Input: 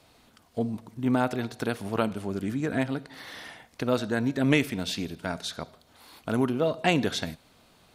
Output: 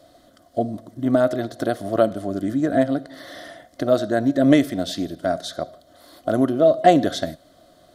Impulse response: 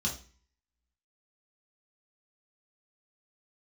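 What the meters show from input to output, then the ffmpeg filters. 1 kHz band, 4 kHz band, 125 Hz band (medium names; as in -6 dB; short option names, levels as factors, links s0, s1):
+9.5 dB, +1.5 dB, +2.0 dB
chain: -af "superequalizer=6b=2.51:8b=3.98:9b=0.447:12b=0.282,volume=1.26"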